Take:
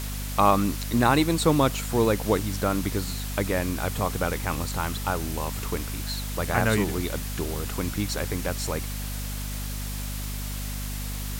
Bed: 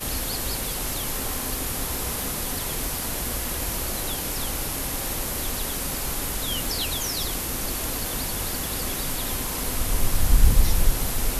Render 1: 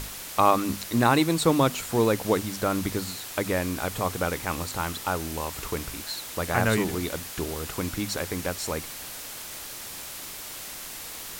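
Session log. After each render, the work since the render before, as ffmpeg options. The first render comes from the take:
-af "bandreject=f=50:t=h:w=6,bandreject=f=100:t=h:w=6,bandreject=f=150:t=h:w=6,bandreject=f=200:t=h:w=6,bandreject=f=250:t=h:w=6"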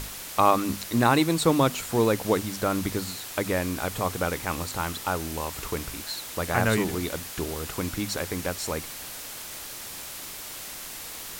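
-af anull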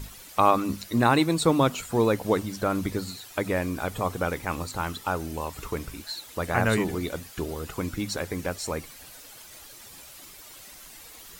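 -af "afftdn=nr=11:nf=-39"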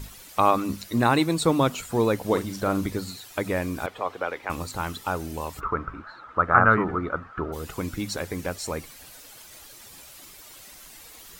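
-filter_complex "[0:a]asettb=1/sr,asplit=3[a][b][c];[a]atrim=end=2.264[d];[b]atrim=start=2.26:end=2.86,asetpts=PTS-STARTPTS,afade=t=in:d=0.004:c=qsin,afade=t=out:st=0.596:d=0.004:c=qsin,asplit=2[e][f];[f]adelay=41,volume=-8.5dB[g];[e][g]amix=inputs=2:normalize=0,atrim=end_sample=26460[h];[c]atrim=start=2.856[i];[d][h]acrossfade=d=0.004:c1=hsin:c2=qsin[j];[j][i]acrossfade=d=0.004:c1=qsin:c2=hsin,asettb=1/sr,asplit=3[k][l][m];[k]atrim=end=3.864[n];[l]atrim=start=3.86:end=4.5,asetpts=PTS-STARTPTS,afade=t=in:d=0.004:c=qsin,afade=t=out:st=0.636:d=0.004:c=qsin,acrossover=split=350 4200:gain=0.112 1 0.126[o][p][q];[o][p][q]amix=inputs=3:normalize=0[r];[m]atrim=start=4.496[s];[n][r]acrossfade=d=0.004:c1=hsin:c2=qsin[t];[t][s]acrossfade=d=0.004:c1=qsin:c2=hsin,asplit=3[u][v][w];[u]afade=t=out:st=5.59:d=0.02[x];[v]lowpass=f=1.3k:t=q:w=9.3,afade=t=in:st=5.59:d=0.02,afade=t=out:st=7.52:d=0.02[y];[w]afade=t=in:st=7.52:d=0.02[z];[x][y][z]amix=inputs=3:normalize=0"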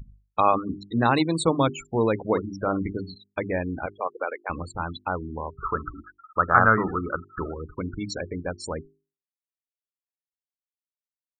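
-af "afftfilt=real='re*gte(hypot(re,im),0.0447)':imag='im*gte(hypot(re,im),0.0447)':win_size=1024:overlap=0.75,bandreject=f=50:t=h:w=6,bandreject=f=100:t=h:w=6,bandreject=f=150:t=h:w=6,bandreject=f=200:t=h:w=6,bandreject=f=250:t=h:w=6,bandreject=f=300:t=h:w=6,bandreject=f=350:t=h:w=6,bandreject=f=400:t=h:w=6"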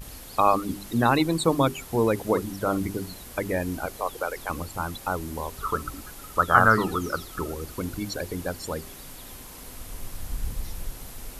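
-filter_complex "[1:a]volume=-14.5dB[a];[0:a][a]amix=inputs=2:normalize=0"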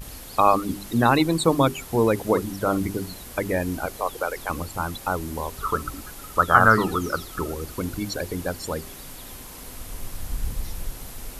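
-af "volume=2.5dB,alimiter=limit=-2dB:level=0:latency=1"

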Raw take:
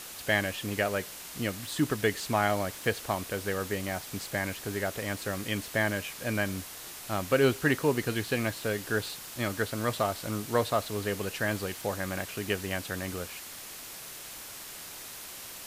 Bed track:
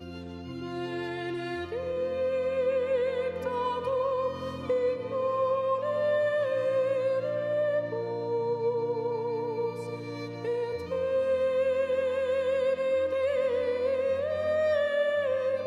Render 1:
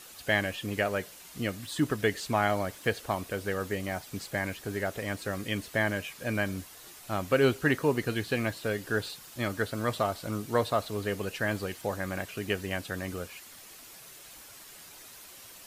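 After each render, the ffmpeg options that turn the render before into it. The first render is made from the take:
-af "afftdn=nr=8:nf=-44"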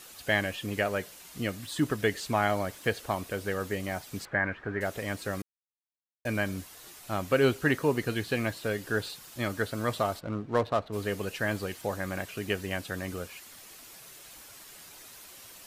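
-filter_complex "[0:a]asettb=1/sr,asplit=3[a][b][c];[a]atrim=end=4.254[d];[b]atrim=start=4.25:end=4.81,asetpts=PTS-STARTPTS,afade=t=in:d=0.004:c=qsin,afade=t=out:st=0.556:d=0.004:c=qsin,lowpass=f=1.6k:t=q:w=2.3[e];[c]atrim=start=4.806[f];[d][e]acrossfade=d=0.004:c1=hsin:c2=qsin[g];[g][f]acrossfade=d=0.004:c1=qsin:c2=hsin,asplit=3[h][i][j];[h]afade=t=out:st=10.19:d=0.02[k];[i]adynamicsmooth=sensitivity=5.5:basefreq=1.2k,afade=t=in:st=10.19:d=0.02,afade=t=out:st=10.92:d=0.02[l];[j]afade=t=in:st=10.92:d=0.02[m];[k][l][m]amix=inputs=3:normalize=0,asplit=3[n][o][p];[n]atrim=end=5.42,asetpts=PTS-STARTPTS,afade=t=out:st=5.416:d=0.004:c=hsin[q];[o]atrim=start=5.42:end=6.25,asetpts=PTS-STARTPTS,volume=0[r];[p]atrim=start=6.25,asetpts=PTS-STARTPTS,afade=t=in:d=0.004:c=hsin[s];[q][r][s]concat=n=3:v=0:a=1"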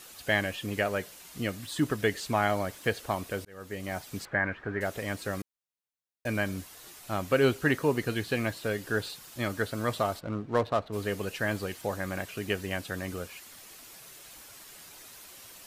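-filter_complex "[0:a]asplit=2[a][b];[a]atrim=end=3.45,asetpts=PTS-STARTPTS,afade=t=out:st=3.446:d=0.004:c=hsin[c];[b]atrim=start=3.45,asetpts=PTS-STARTPTS,afade=t=in:d=0.53[d];[c][d]concat=n=2:v=0:a=1"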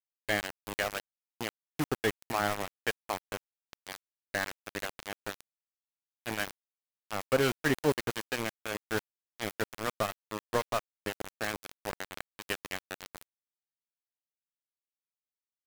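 -filter_complex "[0:a]acrossover=split=910[a][b];[a]aeval=exprs='val(0)*(1-0.5/2+0.5/2*cos(2*PI*5.7*n/s))':c=same[c];[b]aeval=exprs='val(0)*(1-0.5/2-0.5/2*cos(2*PI*5.7*n/s))':c=same[d];[c][d]amix=inputs=2:normalize=0,aeval=exprs='val(0)*gte(abs(val(0)),0.0422)':c=same"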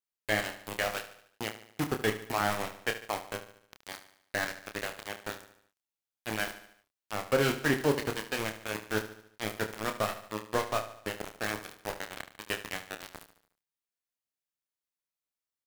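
-filter_complex "[0:a]asplit=2[a][b];[b]adelay=28,volume=-7dB[c];[a][c]amix=inputs=2:normalize=0,aecho=1:1:73|146|219|292|365:0.237|0.119|0.0593|0.0296|0.0148"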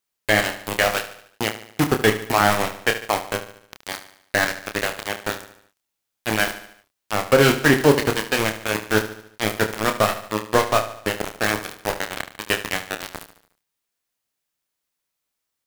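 -af "volume=12dB,alimiter=limit=-3dB:level=0:latency=1"

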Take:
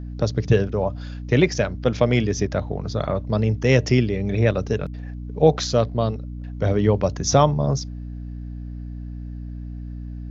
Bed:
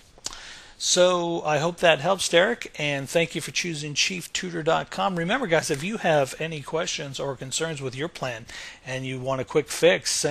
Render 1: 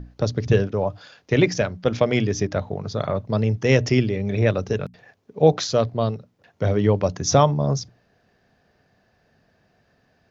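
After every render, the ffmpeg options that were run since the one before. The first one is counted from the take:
-af "bandreject=f=60:t=h:w=6,bandreject=f=120:t=h:w=6,bandreject=f=180:t=h:w=6,bandreject=f=240:t=h:w=6,bandreject=f=300:t=h:w=6"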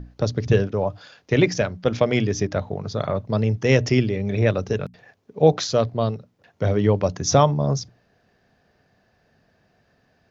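-af anull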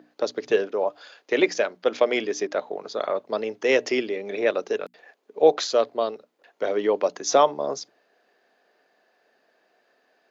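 -af "highpass=f=330:w=0.5412,highpass=f=330:w=1.3066,equalizer=f=5.6k:t=o:w=0.23:g=-5.5"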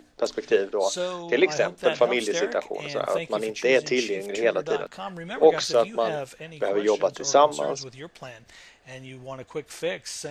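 -filter_complex "[1:a]volume=-10.5dB[a];[0:a][a]amix=inputs=2:normalize=0"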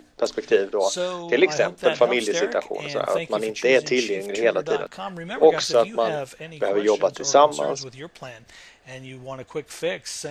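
-af "volume=2.5dB,alimiter=limit=-3dB:level=0:latency=1"

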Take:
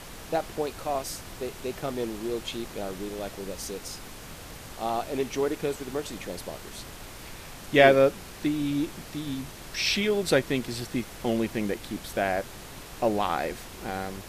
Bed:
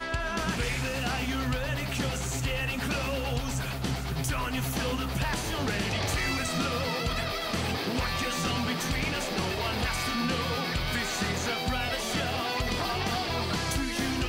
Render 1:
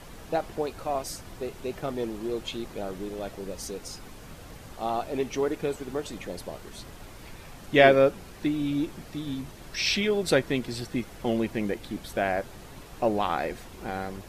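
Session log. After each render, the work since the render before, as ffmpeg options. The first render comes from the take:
-af "afftdn=nr=7:nf=-44"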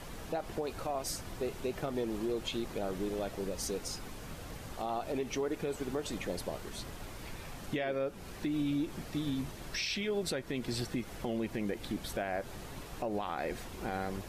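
-af "acompressor=threshold=-28dB:ratio=4,alimiter=level_in=1.5dB:limit=-24dB:level=0:latency=1:release=105,volume=-1.5dB"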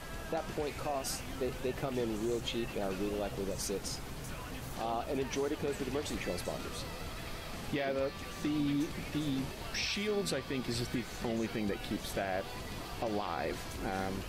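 -filter_complex "[1:a]volume=-16dB[a];[0:a][a]amix=inputs=2:normalize=0"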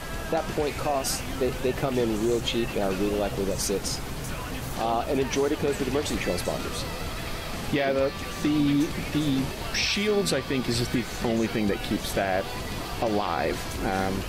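-af "volume=9.5dB"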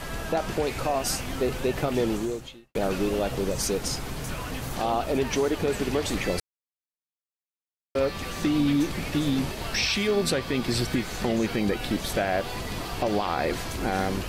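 -filter_complex "[0:a]asplit=4[a][b][c][d];[a]atrim=end=2.75,asetpts=PTS-STARTPTS,afade=t=out:st=2.13:d=0.62:c=qua[e];[b]atrim=start=2.75:end=6.4,asetpts=PTS-STARTPTS,afade=t=in:d=0.004:c=hsin,afade=t=out:st=3.646:d=0.004:c=hsin[f];[c]atrim=start=6.4:end=7.95,asetpts=PTS-STARTPTS,volume=0[g];[d]atrim=start=7.95,asetpts=PTS-STARTPTS,afade=t=in:d=0.004:c=hsin[h];[e][f][g][h]concat=n=4:v=0:a=1"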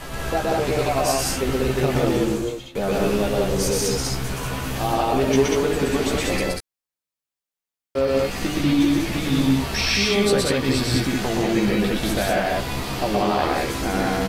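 -filter_complex "[0:a]asplit=2[a][b];[b]adelay=15,volume=-4dB[c];[a][c]amix=inputs=2:normalize=0,asplit=2[d][e];[e]aecho=0:1:122.4|189.5:0.891|0.891[f];[d][f]amix=inputs=2:normalize=0"

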